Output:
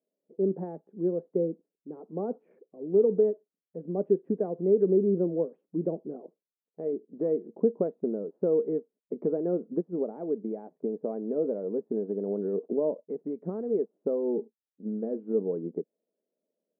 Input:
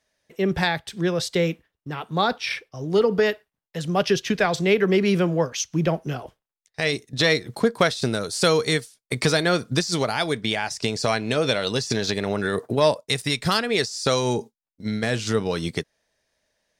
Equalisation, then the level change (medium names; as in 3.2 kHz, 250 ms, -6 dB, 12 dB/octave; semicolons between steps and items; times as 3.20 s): brick-wall FIR high-pass 170 Hz; four-pole ladder low-pass 540 Hz, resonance 40%; distance through air 320 m; +1.5 dB